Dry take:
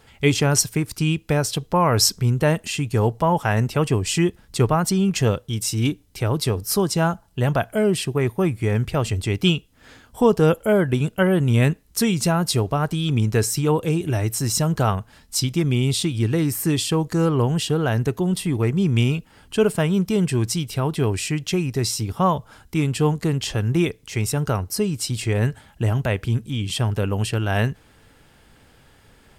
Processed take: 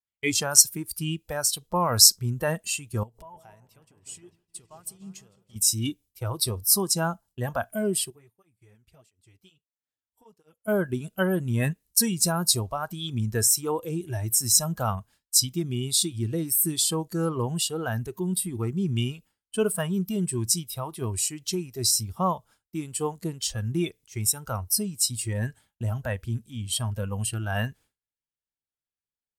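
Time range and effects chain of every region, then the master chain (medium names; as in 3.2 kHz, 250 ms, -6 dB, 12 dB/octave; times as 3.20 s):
3.03–5.56 s: compression 12:1, threshold -31 dBFS + delay with an opening low-pass 155 ms, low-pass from 750 Hz, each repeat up 1 oct, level -6 dB
8.10–10.68 s: compression 3:1, threshold -32 dBFS + cancelling through-zero flanger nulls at 1.5 Hz, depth 7.4 ms
whole clip: spectral noise reduction 13 dB; expander -41 dBFS; peaking EQ 12 kHz +13 dB 2.4 oct; trim -6.5 dB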